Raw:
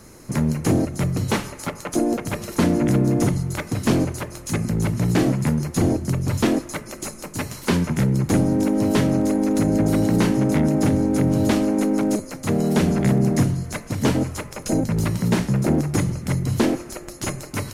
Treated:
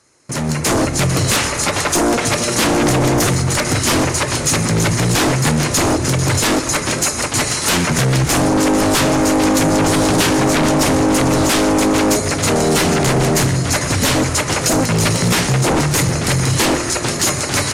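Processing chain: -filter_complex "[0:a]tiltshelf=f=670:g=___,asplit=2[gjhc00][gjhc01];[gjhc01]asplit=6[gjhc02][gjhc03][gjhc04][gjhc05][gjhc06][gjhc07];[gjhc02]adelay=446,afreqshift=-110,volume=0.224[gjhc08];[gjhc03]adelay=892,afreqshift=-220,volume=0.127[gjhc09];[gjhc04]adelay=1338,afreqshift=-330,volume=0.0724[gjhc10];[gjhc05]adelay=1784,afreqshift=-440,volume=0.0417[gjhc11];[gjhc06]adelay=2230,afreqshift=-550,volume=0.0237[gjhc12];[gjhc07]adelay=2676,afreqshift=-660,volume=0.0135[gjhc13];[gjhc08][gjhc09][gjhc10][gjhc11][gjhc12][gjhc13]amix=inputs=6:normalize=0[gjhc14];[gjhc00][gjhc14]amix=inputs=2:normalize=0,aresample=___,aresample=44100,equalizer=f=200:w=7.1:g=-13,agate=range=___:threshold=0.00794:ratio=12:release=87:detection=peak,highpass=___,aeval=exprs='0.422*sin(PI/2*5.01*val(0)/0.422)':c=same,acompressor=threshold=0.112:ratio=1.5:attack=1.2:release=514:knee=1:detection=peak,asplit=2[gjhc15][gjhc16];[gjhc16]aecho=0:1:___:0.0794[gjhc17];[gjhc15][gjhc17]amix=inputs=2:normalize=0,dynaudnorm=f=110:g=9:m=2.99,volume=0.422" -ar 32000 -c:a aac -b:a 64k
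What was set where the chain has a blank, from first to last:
-5.5, 22050, 0.0891, 73, 122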